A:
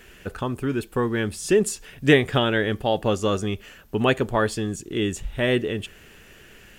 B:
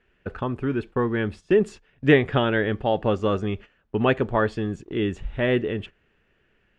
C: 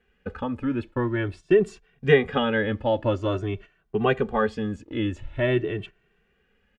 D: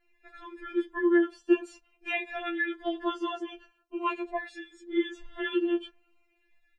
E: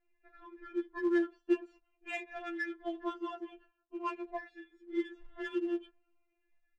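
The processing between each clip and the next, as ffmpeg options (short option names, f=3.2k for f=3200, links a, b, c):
-af "lowpass=2.5k,agate=range=-16dB:threshold=-37dB:ratio=16:detection=peak"
-filter_complex "[0:a]asplit=2[a][b];[b]adelay=2.1,afreqshift=0.47[c];[a][c]amix=inputs=2:normalize=1,volume=1.5dB"
-filter_complex "[0:a]acrossover=split=270|2600[a][b][c];[a]acompressor=threshold=-38dB:ratio=6[d];[d][b][c]amix=inputs=3:normalize=0,afftfilt=real='re*4*eq(mod(b,16),0)':imag='im*4*eq(mod(b,16),0)':win_size=2048:overlap=0.75"
-af "acrusher=bits=6:mode=log:mix=0:aa=0.000001,adynamicsmooth=sensitivity=2:basefreq=2.1k,volume=-6.5dB"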